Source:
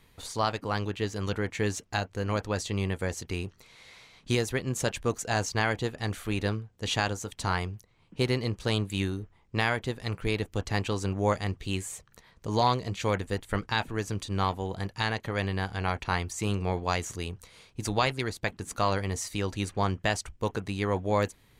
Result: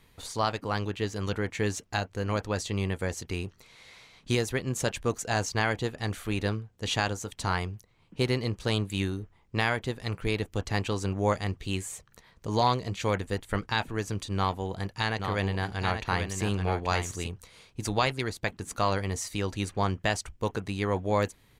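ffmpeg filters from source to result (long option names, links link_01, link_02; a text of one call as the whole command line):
ffmpeg -i in.wav -filter_complex "[0:a]asplit=3[link_01][link_02][link_03];[link_01]afade=type=out:start_time=15.18:duration=0.02[link_04];[link_02]aecho=1:1:832:0.501,afade=type=in:start_time=15.18:duration=0.02,afade=type=out:start_time=17.26:duration=0.02[link_05];[link_03]afade=type=in:start_time=17.26:duration=0.02[link_06];[link_04][link_05][link_06]amix=inputs=3:normalize=0" out.wav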